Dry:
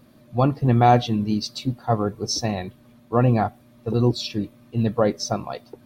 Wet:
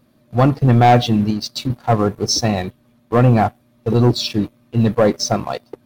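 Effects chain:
0:01.30–0:01.70: downward compressor 5 to 1, threshold −26 dBFS, peak gain reduction 7.5 dB
leveller curve on the samples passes 2

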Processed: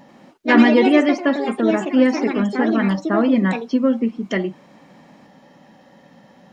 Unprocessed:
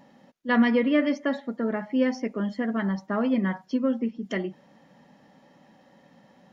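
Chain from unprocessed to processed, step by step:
delay with pitch and tempo change per echo 89 ms, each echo +4 semitones, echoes 2, each echo −6 dB
level +7.5 dB

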